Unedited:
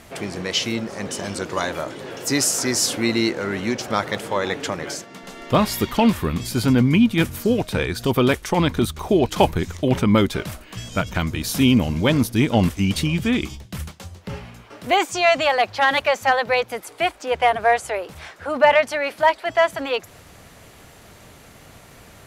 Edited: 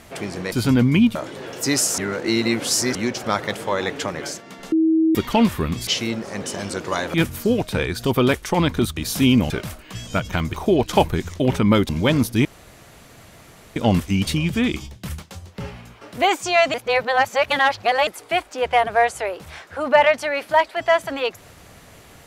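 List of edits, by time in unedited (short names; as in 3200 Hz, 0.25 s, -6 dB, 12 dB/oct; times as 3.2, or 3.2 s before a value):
0.52–1.79 swap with 6.51–7.14
2.62–3.59 reverse
5.36–5.79 bleep 321 Hz -13.5 dBFS
8.97–10.32 swap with 11.36–11.89
12.45 insert room tone 1.31 s
15.43–16.76 reverse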